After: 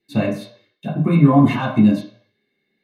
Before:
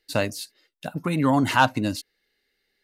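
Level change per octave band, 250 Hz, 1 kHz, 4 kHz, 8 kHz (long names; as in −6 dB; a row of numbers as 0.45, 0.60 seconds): +10.0 dB, −1.5 dB, −5.0 dB, below −10 dB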